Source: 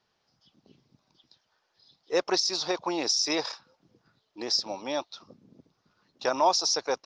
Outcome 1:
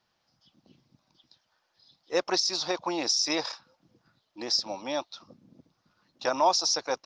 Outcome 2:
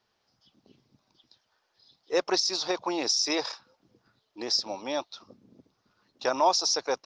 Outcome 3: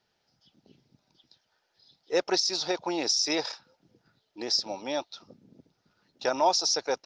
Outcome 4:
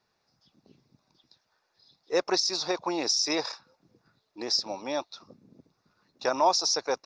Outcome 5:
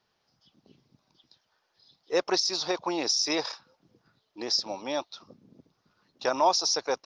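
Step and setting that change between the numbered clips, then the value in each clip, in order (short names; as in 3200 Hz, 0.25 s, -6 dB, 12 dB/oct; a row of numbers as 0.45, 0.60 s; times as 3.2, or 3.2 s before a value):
notch, frequency: 420, 160, 1100, 3100, 7800 Hz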